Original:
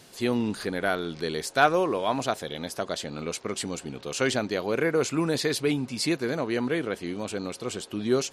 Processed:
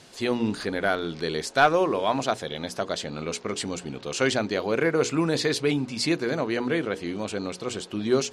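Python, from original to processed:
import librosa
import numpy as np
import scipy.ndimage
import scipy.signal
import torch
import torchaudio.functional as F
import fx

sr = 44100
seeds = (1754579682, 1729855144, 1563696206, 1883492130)

p1 = scipy.signal.sosfilt(scipy.signal.butter(2, 8100.0, 'lowpass', fs=sr, output='sos'), x)
p2 = fx.hum_notches(p1, sr, base_hz=60, count=8)
p3 = np.clip(p2, -10.0 ** (-16.0 / 20.0), 10.0 ** (-16.0 / 20.0))
p4 = p2 + (p3 * 10.0 ** (-5.5 / 20.0))
y = p4 * 10.0 ** (-1.5 / 20.0)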